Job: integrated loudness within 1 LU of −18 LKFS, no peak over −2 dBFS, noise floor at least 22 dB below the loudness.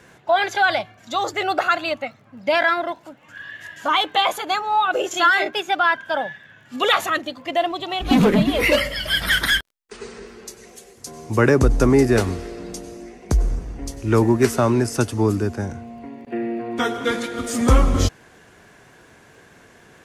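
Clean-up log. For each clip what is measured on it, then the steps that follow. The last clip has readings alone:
crackle rate 27 per second; integrated loudness −20.0 LKFS; sample peak −4.0 dBFS; target loudness −18.0 LKFS
→ click removal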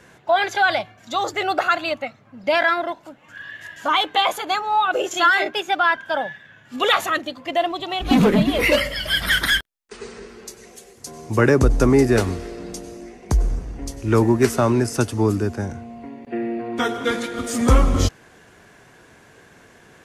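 crackle rate 0.050 per second; integrated loudness −20.0 LKFS; sample peak −3.0 dBFS; target loudness −18.0 LKFS
→ level +2 dB
brickwall limiter −2 dBFS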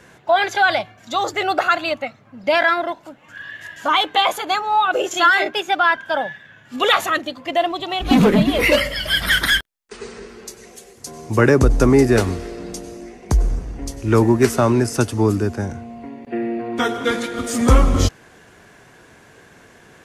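integrated loudness −18.0 LKFS; sample peak −2.0 dBFS; background noise floor −49 dBFS

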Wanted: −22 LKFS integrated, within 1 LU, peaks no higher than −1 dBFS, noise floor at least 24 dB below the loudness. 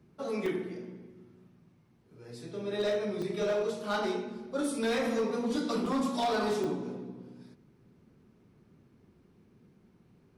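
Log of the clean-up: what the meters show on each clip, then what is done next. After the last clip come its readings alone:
share of clipped samples 1.4%; peaks flattened at −24.5 dBFS; number of dropouts 4; longest dropout 3.1 ms; integrated loudness −32.5 LKFS; sample peak −24.5 dBFS; target loudness −22.0 LKFS
→ clipped peaks rebuilt −24.5 dBFS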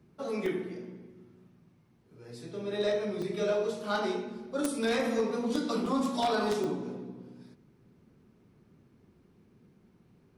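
share of clipped samples 0.0%; number of dropouts 4; longest dropout 3.1 ms
→ repair the gap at 0:00.46/0:03.22/0:05.86/0:06.64, 3.1 ms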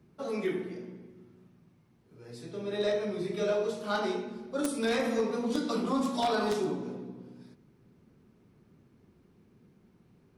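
number of dropouts 0; integrated loudness −32.0 LKFS; sample peak −15.5 dBFS; target loudness −22.0 LKFS
→ level +10 dB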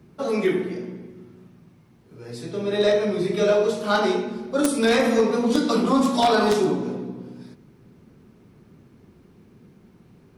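integrated loudness −22.0 LKFS; sample peak −5.5 dBFS; background noise floor −54 dBFS

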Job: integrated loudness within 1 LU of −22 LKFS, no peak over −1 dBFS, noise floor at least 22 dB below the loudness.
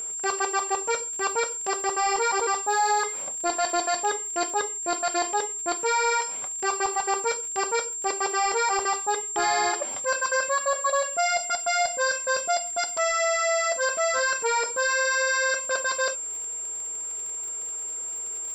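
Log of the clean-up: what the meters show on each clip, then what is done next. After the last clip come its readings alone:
crackle rate 44 per second; interfering tone 7,400 Hz; level of the tone −30 dBFS; integrated loudness −25.0 LKFS; sample peak −14.0 dBFS; target loudness −22.0 LKFS
→ click removal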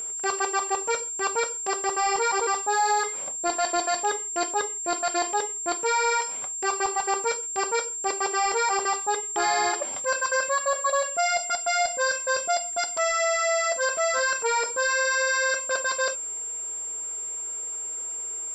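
crackle rate 0.16 per second; interfering tone 7,400 Hz; level of the tone −30 dBFS
→ notch filter 7,400 Hz, Q 30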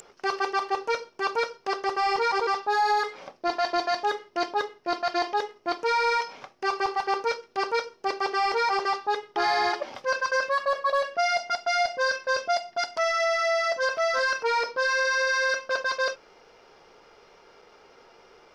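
interfering tone none found; integrated loudness −26.0 LKFS; sample peak −13.5 dBFS; target loudness −22.0 LKFS
→ level +4 dB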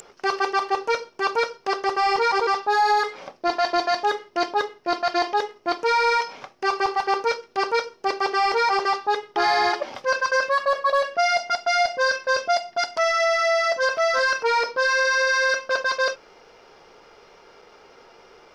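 integrated loudness −22.0 LKFS; sample peak −9.5 dBFS; background noise floor −52 dBFS

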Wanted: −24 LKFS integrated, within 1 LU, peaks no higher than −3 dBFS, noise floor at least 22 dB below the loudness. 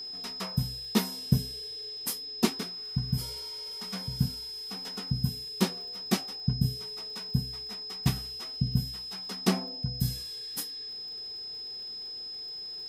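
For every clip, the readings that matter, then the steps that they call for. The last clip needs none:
crackle rate 39 per second; interfering tone 5,100 Hz; level of the tone −37 dBFS; integrated loudness −32.5 LKFS; sample peak −10.0 dBFS; target loudness −24.0 LKFS
→ click removal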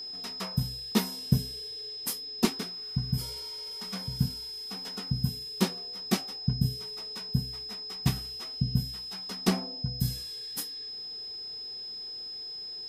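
crackle rate 0 per second; interfering tone 5,100 Hz; level of the tone −37 dBFS
→ notch filter 5,100 Hz, Q 30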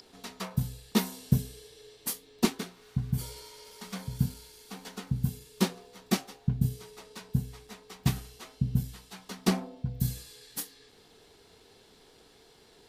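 interfering tone none found; integrated loudness −33.0 LKFS; sample peak −10.0 dBFS; target loudness −24.0 LKFS
→ level +9 dB
brickwall limiter −3 dBFS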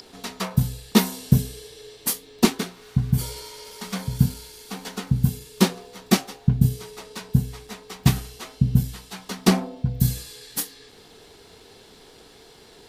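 integrated loudness −24.0 LKFS; sample peak −3.0 dBFS; background noise floor −50 dBFS

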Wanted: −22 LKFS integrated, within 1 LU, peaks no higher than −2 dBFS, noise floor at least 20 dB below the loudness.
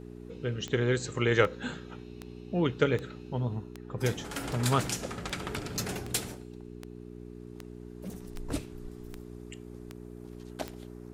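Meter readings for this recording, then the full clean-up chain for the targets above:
number of clicks 14; mains hum 60 Hz; hum harmonics up to 420 Hz; level of the hum −41 dBFS; integrated loudness −32.0 LKFS; sample peak −8.5 dBFS; target loudness −22.0 LKFS
→ click removal
hum removal 60 Hz, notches 7
level +10 dB
brickwall limiter −2 dBFS

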